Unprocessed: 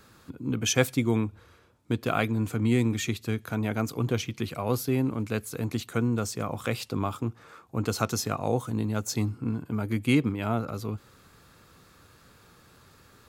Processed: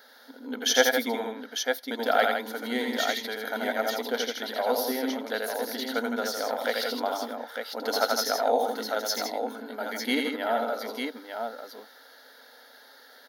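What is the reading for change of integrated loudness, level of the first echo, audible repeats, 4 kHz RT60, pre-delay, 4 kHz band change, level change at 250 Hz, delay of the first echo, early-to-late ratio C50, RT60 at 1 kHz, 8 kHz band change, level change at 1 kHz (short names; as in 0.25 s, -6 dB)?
+0.5 dB, -4.5 dB, 3, none, none, +7.0 dB, -5.5 dB, 83 ms, none, none, +1.5 dB, +6.5 dB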